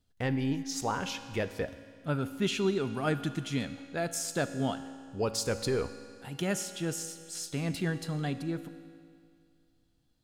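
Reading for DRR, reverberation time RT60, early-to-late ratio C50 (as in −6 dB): 10.0 dB, 2.2 s, 11.0 dB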